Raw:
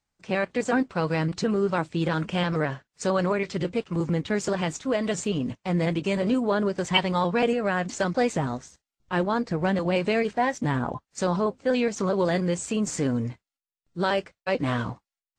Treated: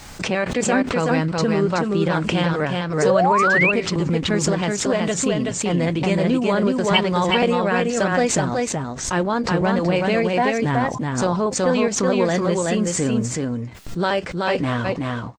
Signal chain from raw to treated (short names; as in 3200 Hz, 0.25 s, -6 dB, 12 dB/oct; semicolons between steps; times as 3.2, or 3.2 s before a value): echo 0.375 s -3 dB; painted sound rise, 3.02–3.72, 410–2800 Hz -21 dBFS; backwards sustainer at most 67 dB/s; gain +3.5 dB